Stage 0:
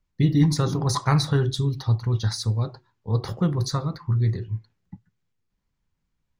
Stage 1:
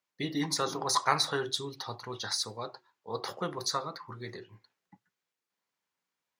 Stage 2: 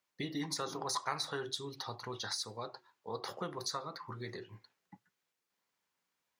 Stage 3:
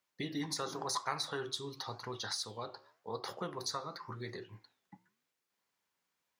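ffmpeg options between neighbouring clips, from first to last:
ffmpeg -i in.wav -af "highpass=520" out.wav
ffmpeg -i in.wav -af "acompressor=threshold=-44dB:ratio=2,volume=2dB" out.wav
ffmpeg -i in.wav -af "flanger=delay=7.4:depth=7.4:regen=-87:speed=0.92:shape=sinusoidal,volume=4.5dB" out.wav

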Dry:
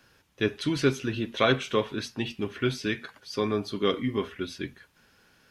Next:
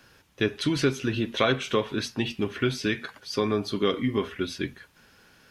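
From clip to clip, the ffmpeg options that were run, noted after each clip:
ffmpeg -i in.wav -af "acompressor=threshold=-27dB:ratio=2,volume=4.5dB" out.wav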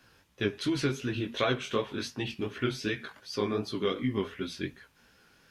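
ffmpeg -i in.wav -af "flanger=delay=15:depth=7.1:speed=2.7,volume=-2dB" out.wav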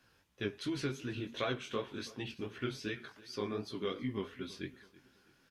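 ffmpeg -i in.wav -af "aecho=1:1:328|656|984:0.0944|0.0406|0.0175,volume=-7.5dB" out.wav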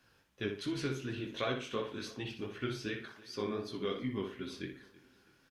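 ffmpeg -i in.wav -filter_complex "[0:a]asplit=2[link_01][link_02];[link_02]adelay=60,lowpass=frequency=4000:poles=1,volume=-6.5dB,asplit=2[link_03][link_04];[link_04]adelay=60,lowpass=frequency=4000:poles=1,volume=0.3,asplit=2[link_05][link_06];[link_06]adelay=60,lowpass=frequency=4000:poles=1,volume=0.3,asplit=2[link_07][link_08];[link_08]adelay=60,lowpass=frequency=4000:poles=1,volume=0.3[link_09];[link_01][link_03][link_05][link_07][link_09]amix=inputs=5:normalize=0" out.wav

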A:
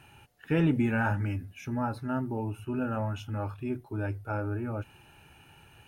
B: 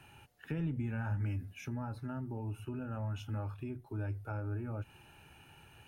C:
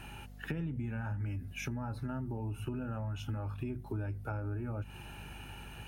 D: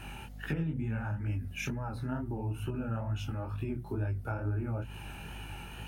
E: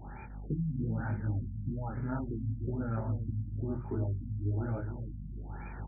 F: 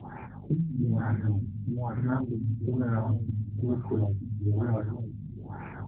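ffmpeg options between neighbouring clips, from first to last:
ffmpeg -i in.wav -filter_complex "[0:a]acrossover=split=140[link_01][link_02];[link_02]acompressor=threshold=-39dB:ratio=5[link_03];[link_01][link_03]amix=inputs=2:normalize=0,volume=-2.5dB" out.wav
ffmpeg -i in.wav -af "acompressor=threshold=-44dB:ratio=6,aeval=exprs='val(0)+0.00126*(sin(2*PI*50*n/s)+sin(2*PI*2*50*n/s)/2+sin(2*PI*3*50*n/s)/3+sin(2*PI*4*50*n/s)/4+sin(2*PI*5*50*n/s)/5)':channel_layout=same,volume=9dB" out.wav
ffmpeg -i in.wav -af "flanger=delay=18:depth=8:speed=2.2,volume=6dB" out.wav
ffmpeg -i in.wav -af "aecho=1:1:300|600|900|1200:0.398|0.127|0.0408|0.013,afftfilt=real='re*lt(b*sr/1024,260*pow(2500/260,0.5+0.5*sin(2*PI*1.1*pts/sr)))':imag='im*lt(b*sr/1024,260*pow(2500/260,0.5+0.5*sin(2*PI*1.1*pts/sr)))':win_size=1024:overlap=0.75" out.wav
ffmpeg -i in.wav -af "volume=7.5dB" -ar 8000 -c:a libopencore_amrnb -b:a 7950 out.amr

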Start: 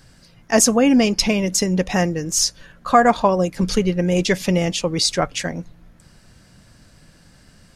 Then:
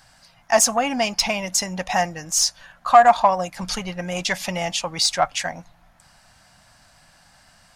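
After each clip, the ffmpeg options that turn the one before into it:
ffmpeg -i in.wav -af "acontrast=37,lowshelf=frequency=560:width_type=q:width=3:gain=-9.5,volume=-5.5dB" out.wav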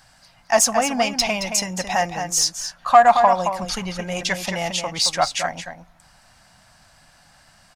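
ffmpeg -i in.wav -filter_complex "[0:a]asplit=2[link_01][link_02];[link_02]adelay=221.6,volume=-7dB,highshelf=frequency=4000:gain=-4.99[link_03];[link_01][link_03]amix=inputs=2:normalize=0" out.wav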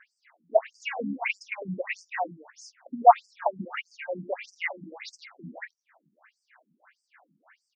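ffmpeg -i in.wav -af "highshelf=frequency=2900:width_type=q:width=3:gain=-10.5,adynamicsmooth=sensitivity=1:basefreq=6200,afftfilt=real='re*between(b*sr/1024,230*pow(6700/230,0.5+0.5*sin(2*PI*1.6*pts/sr))/1.41,230*pow(6700/230,0.5+0.5*sin(2*PI*1.6*pts/sr))*1.41)':imag='im*between(b*sr/1024,230*pow(6700/230,0.5+0.5*sin(2*PI*1.6*pts/sr))/1.41,230*pow(6700/230,0.5+0.5*sin(2*PI*1.6*pts/sr))*1.41)':win_size=1024:overlap=0.75" out.wav

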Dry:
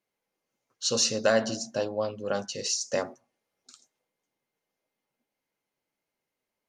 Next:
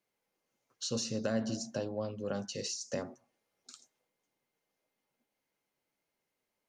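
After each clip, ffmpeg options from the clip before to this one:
ffmpeg -i in.wav -filter_complex "[0:a]acrossover=split=300[link_01][link_02];[link_02]acompressor=threshold=-38dB:ratio=4[link_03];[link_01][link_03]amix=inputs=2:normalize=0" out.wav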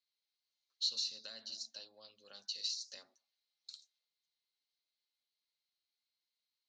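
ffmpeg -i in.wav -af "bandpass=frequency=4100:width_type=q:width=6.4:csg=0,volume=8.5dB" out.wav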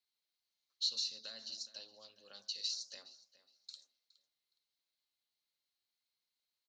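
ffmpeg -i in.wav -filter_complex "[0:a]asplit=2[link_01][link_02];[link_02]adelay=416,lowpass=frequency=3600:poles=1,volume=-16dB,asplit=2[link_03][link_04];[link_04]adelay=416,lowpass=frequency=3600:poles=1,volume=0.31,asplit=2[link_05][link_06];[link_06]adelay=416,lowpass=frequency=3600:poles=1,volume=0.31[link_07];[link_01][link_03][link_05][link_07]amix=inputs=4:normalize=0" out.wav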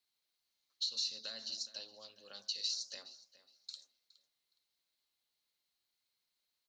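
ffmpeg -i in.wav -af "alimiter=level_in=5dB:limit=-24dB:level=0:latency=1:release=199,volume=-5dB,volume=3.5dB" out.wav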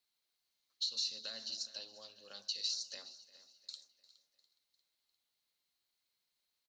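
ffmpeg -i in.wav -af "aecho=1:1:351|702|1053|1404:0.0891|0.0481|0.026|0.014" out.wav

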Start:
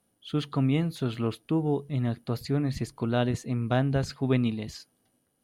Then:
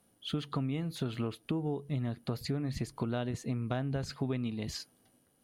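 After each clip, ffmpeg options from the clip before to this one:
ffmpeg -i in.wav -af "acompressor=threshold=-34dB:ratio=10,volume=3.5dB" out.wav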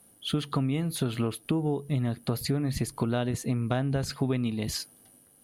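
ffmpeg -i in.wav -af "equalizer=frequency=11000:width=1.7:gain=13,volume=6dB" out.wav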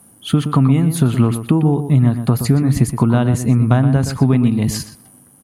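ffmpeg -i in.wav -filter_complex "[0:a]equalizer=frequency=125:width_type=o:width=1:gain=7,equalizer=frequency=250:width_type=o:width=1:gain=5,equalizer=frequency=500:width_type=o:width=1:gain=-3,equalizer=frequency=1000:width_type=o:width=1:gain=6,equalizer=frequency=4000:width_type=o:width=1:gain=-6,equalizer=frequency=8000:width_type=o:width=1:gain=4,asplit=2[link_01][link_02];[link_02]adelay=121,lowpass=frequency=2900:poles=1,volume=-9.5dB,asplit=2[link_03][link_04];[link_04]adelay=121,lowpass=frequency=2900:poles=1,volume=0.18,asplit=2[link_05][link_06];[link_06]adelay=121,lowpass=frequency=2900:poles=1,volume=0.18[link_07];[link_01][link_03][link_05][link_07]amix=inputs=4:normalize=0,volume=8dB" out.wav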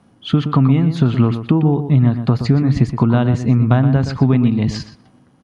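ffmpeg -i in.wav -af "lowpass=frequency=5100:width=0.5412,lowpass=frequency=5100:width=1.3066" out.wav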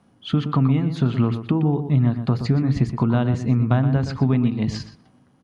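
ffmpeg -i in.wav -af "bandreject=frequency=55.02:width_type=h:width=4,bandreject=frequency=110.04:width_type=h:width=4,bandreject=frequency=165.06:width_type=h:width=4,bandreject=frequency=220.08:width_type=h:width=4,bandreject=frequency=275.1:width_type=h:width=4,bandreject=frequency=330.12:width_type=h:width=4,bandreject=frequency=385.14:width_type=h:width=4,bandreject=frequency=440.16:width_type=h:width=4,bandreject=frequency=495.18:width_type=h:width=4,volume=-5dB" out.wav

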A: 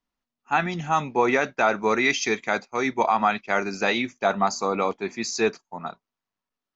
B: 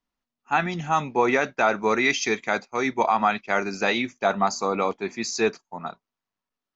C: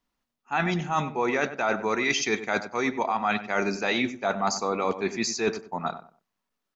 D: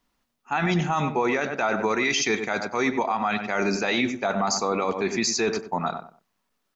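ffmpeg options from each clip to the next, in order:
ffmpeg -i in.wav -af anull out.wav
ffmpeg -i in.wav -filter_complex "[0:a]areverse,acompressor=threshold=-27dB:ratio=6,areverse,asplit=2[link_01][link_02];[link_02]adelay=95,lowpass=frequency=1500:poles=1,volume=-11dB,asplit=2[link_03][link_04];[link_04]adelay=95,lowpass=frequency=1500:poles=1,volume=0.27,asplit=2[link_05][link_06];[link_06]adelay=95,lowpass=frequency=1500:poles=1,volume=0.27[link_07];[link_01][link_03][link_05][link_07]amix=inputs=4:normalize=0,volume=4.5dB" out.wav
ffmpeg -i in.wav -af "alimiter=limit=-21.5dB:level=0:latency=1:release=61,volume=7dB" out.wav

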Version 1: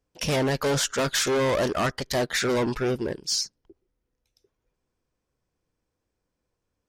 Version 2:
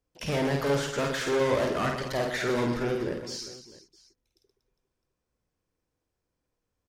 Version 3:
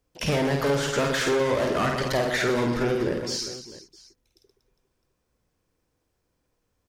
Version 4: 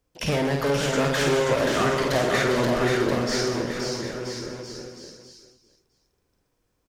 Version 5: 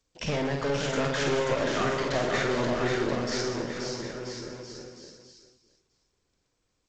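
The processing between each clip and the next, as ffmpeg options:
ffmpeg -i in.wav -filter_complex "[0:a]acrossover=split=2900[link_01][link_02];[link_02]acompressor=threshold=-35dB:ratio=4:attack=1:release=60[link_03];[link_01][link_03]amix=inputs=2:normalize=0,asplit=2[link_04][link_05];[link_05]aecho=0:1:50|125|237.5|406.2|659.4:0.631|0.398|0.251|0.158|0.1[link_06];[link_04][link_06]amix=inputs=2:normalize=0,volume=-4.5dB" out.wav
ffmpeg -i in.wav -af "acompressor=threshold=-28dB:ratio=6,volume=7.5dB" out.wav
ffmpeg -i in.wav -af "aecho=1:1:530|980.5|1363|1689|1966:0.631|0.398|0.251|0.158|0.1" out.wav
ffmpeg -i in.wav -af "aeval=exprs='0.299*(cos(1*acos(clip(val(0)/0.299,-1,1)))-cos(1*PI/2))+0.0266*(cos(4*acos(clip(val(0)/0.299,-1,1)))-cos(4*PI/2))':channel_layout=same,volume=-5dB" -ar 16000 -c:a g722 out.g722

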